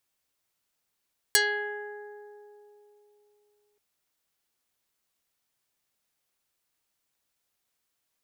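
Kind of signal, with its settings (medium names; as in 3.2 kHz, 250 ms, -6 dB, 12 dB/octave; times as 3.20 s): plucked string G#4, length 2.43 s, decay 3.48 s, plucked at 0.33, dark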